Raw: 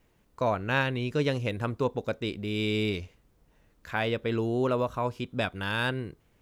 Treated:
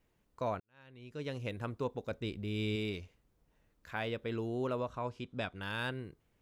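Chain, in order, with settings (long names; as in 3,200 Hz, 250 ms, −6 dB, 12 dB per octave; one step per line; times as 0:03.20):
0:00.60–0:01.46: fade in quadratic
0:02.11–0:02.76: low-shelf EQ 140 Hz +9 dB
0:04.79–0:05.62: low-pass filter 7,900 Hz 12 dB per octave
level −8.5 dB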